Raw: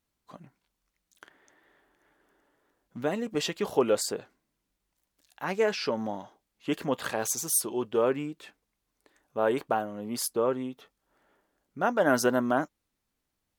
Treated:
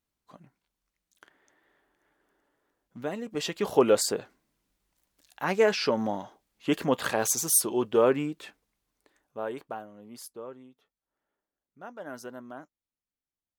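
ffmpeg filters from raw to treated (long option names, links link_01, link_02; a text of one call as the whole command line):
ffmpeg -i in.wav -af "volume=3.5dB,afade=type=in:start_time=3.32:duration=0.5:silence=0.421697,afade=type=out:start_time=8.43:duration=1.06:silence=0.237137,afade=type=out:start_time=9.49:duration=1.16:silence=0.398107" out.wav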